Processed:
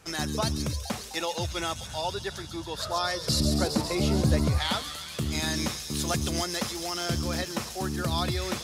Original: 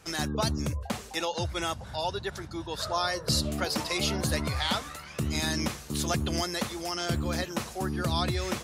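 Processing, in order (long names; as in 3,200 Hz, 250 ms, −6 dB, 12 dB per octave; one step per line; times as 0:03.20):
0:03.40–0:04.58: tilt shelving filter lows +7.5 dB
delay with a high-pass on its return 137 ms, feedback 80%, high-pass 4,200 Hz, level −4 dB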